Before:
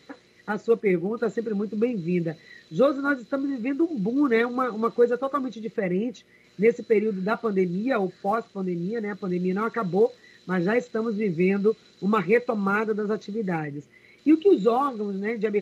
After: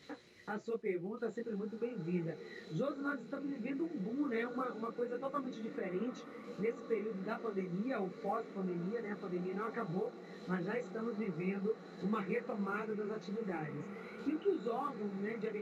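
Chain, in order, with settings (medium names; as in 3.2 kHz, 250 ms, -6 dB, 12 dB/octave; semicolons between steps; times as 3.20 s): compression 2:1, threshold -41 dBFS, peak gain reduction 15 dB; on a send: echo that smears into a reverb 1534 ms, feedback 65%, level -12 dB; on the sum: detune thickener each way 46 cents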